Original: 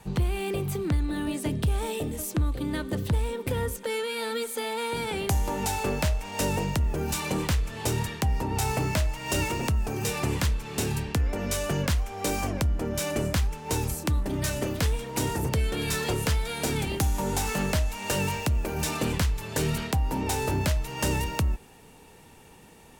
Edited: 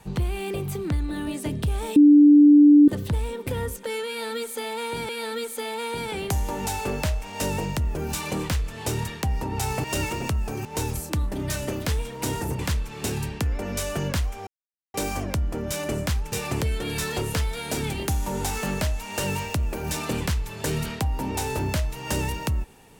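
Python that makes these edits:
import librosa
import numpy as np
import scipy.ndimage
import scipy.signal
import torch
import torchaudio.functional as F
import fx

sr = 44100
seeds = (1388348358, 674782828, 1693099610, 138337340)

y = fx.edit(x, sr, fx.bleep(start_s=1.96, length_s=0.92, hz=293.0, db=-9.0),
    fx.repeat(start_s=4.08, length_s=1.01, count=2),
    fx.cut(start_s=8.83, length_s=0.4),
    fx.swap(start_s=10.04, length_s=0.29, other_s=13.59, other_length_s=1.94),
    fx.insert_silence(at_s=12.21, length_s=0.47), tone=tone)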